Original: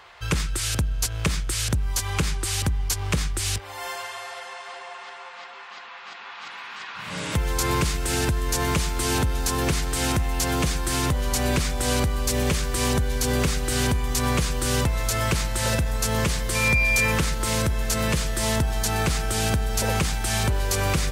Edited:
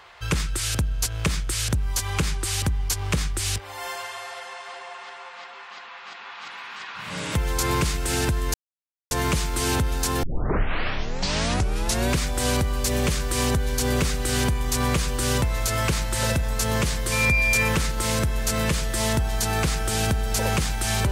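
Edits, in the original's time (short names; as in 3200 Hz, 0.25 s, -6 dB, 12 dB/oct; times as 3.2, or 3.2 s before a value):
8.54 insert silence 0.57 s
9.66 tape start 1.89 s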